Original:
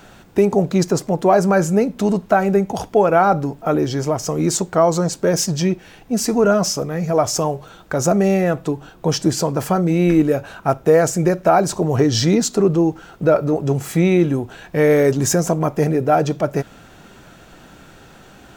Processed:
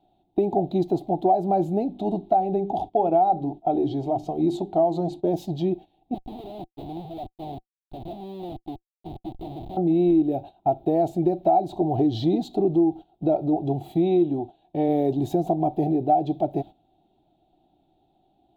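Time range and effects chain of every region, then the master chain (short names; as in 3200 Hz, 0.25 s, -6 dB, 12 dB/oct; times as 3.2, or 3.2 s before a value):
1.83–5.24 LPF 11000 Hz + notches 50/100/150/200/250/300/350/400 Hz
6.14–9.77 elliptic low-pass 2300 Hz + compressor 4:1, threshold -24 dBFS + Schmitt trigger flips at -29.5 dBFS
13.97–14.89 LPF 10000 Hz + low shelf 110 Hz -6.5 dB
whole clip: gate -30 dBFS, range -16 dB; EQ curve 230 Hz 0 dB, 340 Hz +11 dB, 490 Hz -8 dB, 750 Hz +14 dB, 1100 Hz -15 dB, 1600 Hz -25 dB, 3800 Hz +2 dB, 5400 Hz -24 dB, 8200 Hz -22 dB, 13000 Hz -11 dB; compressor 4:1, threshold -8 dBFS; gain -8.5 dB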